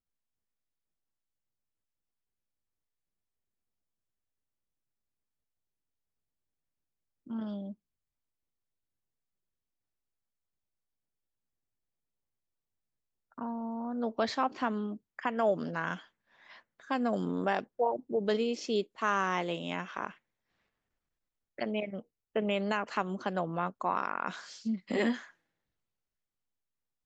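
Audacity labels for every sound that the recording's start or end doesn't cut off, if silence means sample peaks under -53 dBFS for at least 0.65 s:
7.270000	7.740000	sound
13.320000	20.170000	sound
21.580000	25.310000	sound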